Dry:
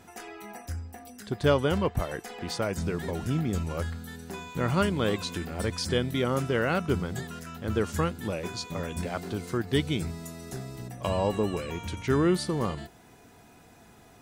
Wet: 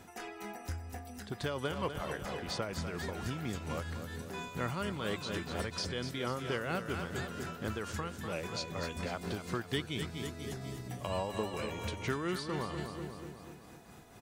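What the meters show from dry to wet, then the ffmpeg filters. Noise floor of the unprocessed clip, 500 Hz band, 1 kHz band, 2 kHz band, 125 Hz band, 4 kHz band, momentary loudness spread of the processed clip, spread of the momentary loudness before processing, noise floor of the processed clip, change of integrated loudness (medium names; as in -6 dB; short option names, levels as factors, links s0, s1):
-55 dBFS, -9.0 dB, -6.0 dB, -4.5 dB, -9.0 dB, -4.5 dB, 8 LU, 14 LU, -52 dBFS, -8.5 dB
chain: -filter_complex "[0:a]aecho=1:1:245|490|735|980|1225|1470:0.316|0.168|0.0888|0.0471|0.025|0.0132,acrossover=split=740|6000[s0][s1][s2];[s0]acompressor=threshold=0.0178:ratio=4[s3];[s1]acompressor=threshold=0.0178:ratio=4[s4];[s2]acompressor=threshold=0.002:ratio=4[s5];[s3][s4][s5]amix=inputs=3:normalize=0,tremolo=f=4.3:d=0.45"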